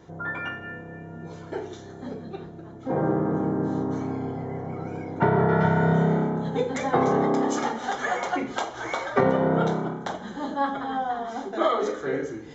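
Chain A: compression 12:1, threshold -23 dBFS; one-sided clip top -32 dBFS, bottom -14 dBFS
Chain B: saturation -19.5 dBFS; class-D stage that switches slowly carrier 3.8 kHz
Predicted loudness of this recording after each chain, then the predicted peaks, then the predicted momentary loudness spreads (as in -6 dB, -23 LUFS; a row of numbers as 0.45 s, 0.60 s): -32.0 LUFS, -29.0 LUFS; -14.0 dBFS, -18.5 dBFS; 8 LU, 12 LU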